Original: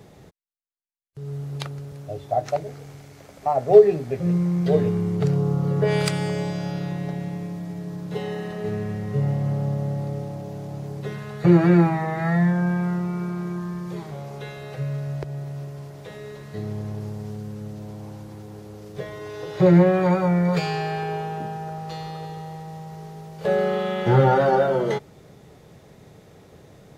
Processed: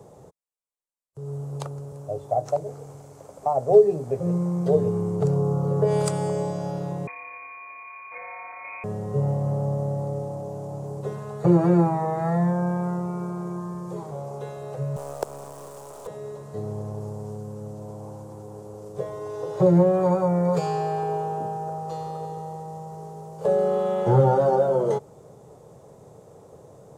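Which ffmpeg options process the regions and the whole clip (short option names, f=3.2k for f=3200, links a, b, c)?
-filter_complex "[0:a]asettb=1/sr,asplit=3[a][b][c];[a]atrim=end=7.074[d];[b]atrim=start=7.07:end=8.84,asetpts=PTS-STARTPTS,afade=t=in:d=0.004:c=qsin,afade=t=out:st=1.766:d=0.004:c=qsin,aeval=exprs='val(0)+0.00708*sin(2*PI*1500*n/s)':c=same,lowpass=f=2.2k:t=q:w=0.5098,lowpass=f=2.2k:t=q:w=0.6013,lowpass=f=2.2k:t=q:w=0.9,lowpass=f=2.2k:t=q:w=2.563,afreqshift=-2600[e];[c]atrim=start=8.836[f];[d][e]acrossfade=d=0.004:c1=hsin:c2=qsin[g];[g][f]acrossfade=d=0.004:c1=qsin:c2=hsin,asettb=1/sr,asplit=3[h][i][j];[h]atrim=end=14.964[k];[i]atrim=start=14.96:end=16.07,asetpts=PTS-STARTPTS,afade=t=in:d=0.004:c=qsin,afade=t=out:st=1.106:d=0.004:c=qsin,highpass=370,acontrast=73,acrusher=bits=4:dc=4:mix=0:aa=0.000001[l];[j]atrim=start=16.066[m];[k][l]acrossfade=d=0.004:c1=hsin:c2=qsin[n];[n][m]acrossfade=d=0.004:c1=qsin:c2=hsin,equalizer=f=125:t=o:w=1:g=6,equalizer=f=500:t=o:w=1:g=11,equalizer=f=1k:t=o:w=1:g=10,equalizer=f=2k:t=o:w=1:g=-8,equalizer=f=4k:t=o:w=1:g=-5,equalizer=f=8k:t=o:w=1:g=11,acrossover=split=330|3000[o][p][q];[p]acompressor=threshold=-16dB:ratio=2[r];[o][r][q]amix=inputs=3:normalize=0,volume=-7.5dB"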